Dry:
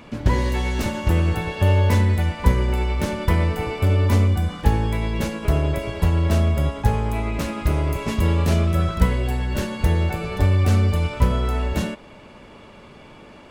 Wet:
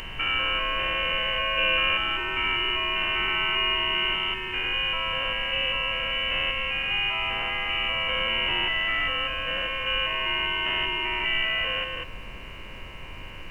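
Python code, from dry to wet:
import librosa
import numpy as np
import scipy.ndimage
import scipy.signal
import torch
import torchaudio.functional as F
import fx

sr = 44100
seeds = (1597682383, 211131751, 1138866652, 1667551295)

y = fx.spec_steps(x, sr, hold_ms=200)
y = scipy.signal.sosfilt(scipy.signal.butter(4, 380.0, 'highpass', fs=sr, output='sos'), y)
y = fx.peak_eq(y, sr, hz=670.0, db=-8.0, octaves=0.58)
y = fx.freq_invert(y, sr, carrier_hz=3300)
y = fx.dmg_noise_colour(y, sr, seeds[0], colour='brown', level_db=-46.0)
y = y * librosa.db_to_amplitude(6.5)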